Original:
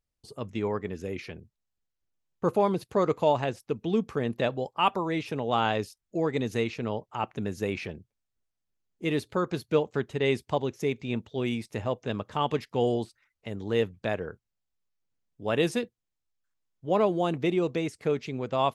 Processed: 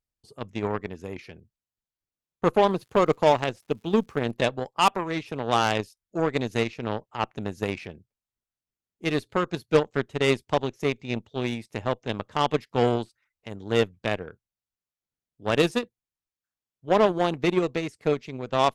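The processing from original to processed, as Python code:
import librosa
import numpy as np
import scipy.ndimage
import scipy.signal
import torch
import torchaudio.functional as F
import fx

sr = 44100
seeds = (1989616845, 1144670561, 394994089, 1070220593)

y = fx.dmg_crackle(x, sr, seeds[0], per_s=200.0, level_db=-47.0, at=(2.69, 4.3), fade=0.02)
y = fx.cheby_harmonics(y, sr, harmonics=(5, 7), levels_db=(-18, -15), full_scale_db=-10.5)
y = F.gain(torch.from_numpy(y), 3.5).numpy()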